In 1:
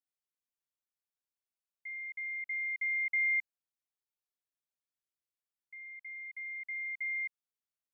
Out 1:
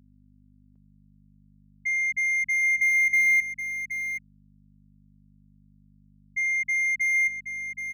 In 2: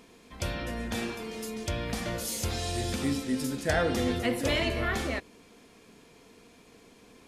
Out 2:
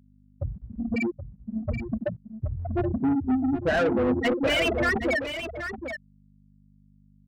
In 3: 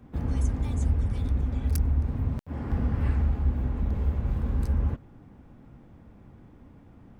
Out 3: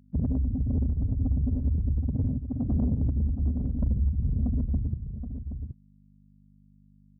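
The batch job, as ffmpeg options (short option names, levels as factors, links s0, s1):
-filter_complex "[0:a]equalizer=f=2600:w=2.6:g=6,afftfilt=real='re*gte(hypot(re,im),0.141)':imag='im*gte(hypot(re,im),0.141)':win_size=1024:overlap=0.75,alimiter=limit=0.0708:level=0:latency=1:release=318,aeval=exprs='val(0)+0.000708*(sin(2*PI*50*n/s)+sin(2*PI*2*50*n/s)/2+sin(2*PI*3*50*n/s)/3+sin(2*PI*4*50*n/s)/4+sin(2*PI*5*50*n/s)/5)':c=same,asplit=2[s0][s1];[s1]highpass=f=720:p=1,volume=14.1,asoftclip=type=tanh:threshold=0.075[s2];[s0][s2]amix=inputs=2:normalize=0,lowpass=f=2500:p=1,volume=0.501,aecho=1:1:774:0.355,volume=2"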